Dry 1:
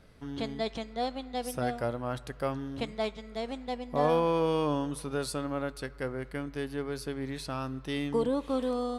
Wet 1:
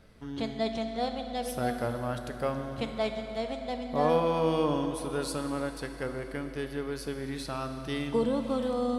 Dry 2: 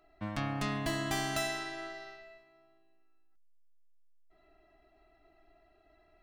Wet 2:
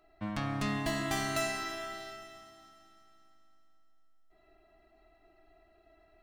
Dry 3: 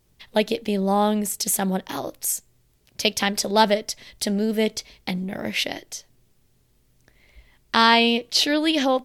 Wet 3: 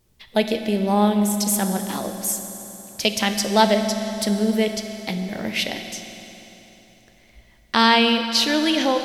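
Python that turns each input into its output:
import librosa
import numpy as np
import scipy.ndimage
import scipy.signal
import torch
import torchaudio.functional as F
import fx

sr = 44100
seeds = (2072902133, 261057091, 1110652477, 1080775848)

y = fx.rev_fdn(x, sr, rt60_s=3.7, lf_ratio=1.0, hf_ratio=0.85, size_ms=27.0, drr_db=6.0)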